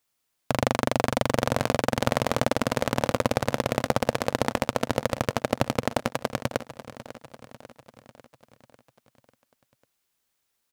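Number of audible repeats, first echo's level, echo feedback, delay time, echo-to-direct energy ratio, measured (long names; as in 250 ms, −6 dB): 5, −14.5 dB, 56%, 546 ms, −13.0 dB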